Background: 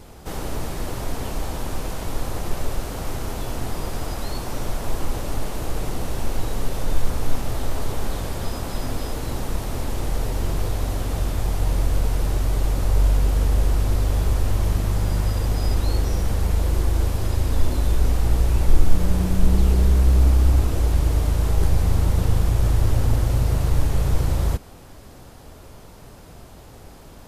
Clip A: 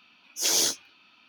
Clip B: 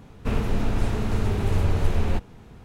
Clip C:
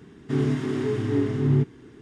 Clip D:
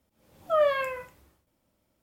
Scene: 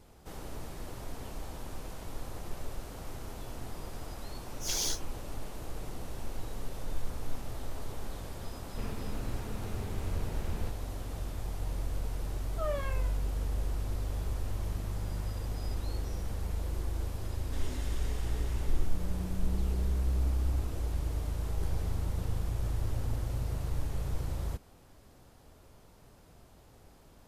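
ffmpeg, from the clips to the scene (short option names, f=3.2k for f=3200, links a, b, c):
-filter_complex "[1:a]asplit=2[a][b];[0:a]volume=-14dB[c];[3:a]aderivative[d];[b]lowpass=1.2k[e];[a]atrim=end=1.28,asetpts=PTS-STARTPTS,volume=-9.5dB,afade=t=in:d=0.004:c=hsin,afade=t=out:st=1.276:d=0.004:c=hsin,adelay=4240[f];[2:a]atrim=end=2.64,asetpts=PTS-STARTPTS,volume=-14.5dB,afade=t=in:d=0.004:c=hsin,afade=t=out:st=2.636:d=0.004:c=hsin,adelay=8520[g];[4:a]atrim=end=2.02,asetpts=PTS-STARTPTS,volume=-12.5dB,afade=t=in:d=0.004:c=hsin,afade=t=out:st=2.016:d=0.004:c=hsin,adelay=12080[h];[d]atrim=end=2.01,asetpts=PTS-STARTPTS,afade=t=in:d=0.004:c=hsin,afade=t=out:st=2.006:d=0.004:c=hsin,adelay=17230[i];[e]atrim=end=1.28,asetpts=PTS-STARTPTS,volume=-16.5dB,afade=t=in:d=0.004:c=hsin,afade=t=out:st=1.276:d=0.004:c=hsin,adelay=21220[j];[c][f][g][h][i][j]amix=inputs=6:normalize=0"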